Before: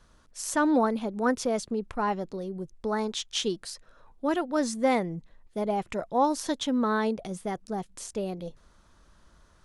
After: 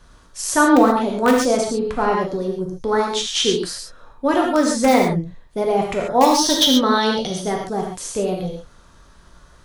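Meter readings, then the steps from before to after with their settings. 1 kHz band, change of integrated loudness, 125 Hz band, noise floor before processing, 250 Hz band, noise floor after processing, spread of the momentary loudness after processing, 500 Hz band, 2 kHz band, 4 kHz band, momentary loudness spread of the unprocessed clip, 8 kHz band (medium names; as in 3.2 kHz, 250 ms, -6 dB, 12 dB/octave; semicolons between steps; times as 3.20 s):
+10.5 dB, +10.5 dB, +10.5 dB, -60 dBFS, +9.5 dB, -50 dBFS, 12 LU, +10.5 dB, +11.0 dB, +15.5 dB, 12 LU, +12.5 dB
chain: time-frequency box 6.23–7.48 s, 2.8–6.5 kHz +10 dB; in parallel at -7.5 dB: integer overflow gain 14.5 dB; on the sum: gated-style reverb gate 160 ms flat, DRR -0.5 dB; trim +4.5 dB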